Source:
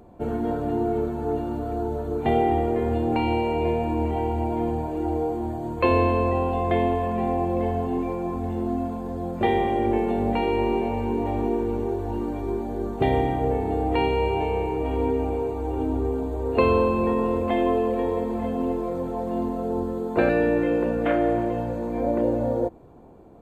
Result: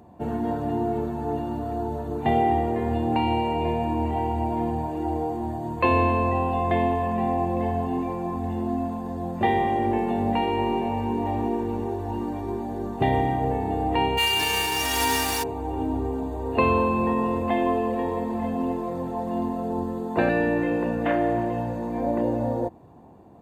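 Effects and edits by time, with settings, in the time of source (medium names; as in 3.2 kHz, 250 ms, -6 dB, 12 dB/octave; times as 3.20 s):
14.17–15.42 s: formants flattened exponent 0.3
whole clip: high-pass 87 Hz 12 dB/octave; comb 1.1 ms, depth 40%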